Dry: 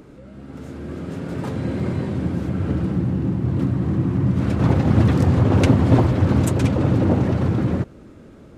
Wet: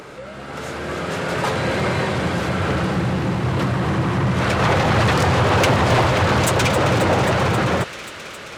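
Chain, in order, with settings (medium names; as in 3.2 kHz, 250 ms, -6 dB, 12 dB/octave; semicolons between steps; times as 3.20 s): peaking EQ 270 Hz -12 dB 0.92 oct; overdrive pedal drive 26 dB, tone 7 kHz, clips at -6 dBFS; feedback echo behind a high-pass 267 ms, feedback 83%, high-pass 2 kHz, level -10.5 dB; trim -2 dB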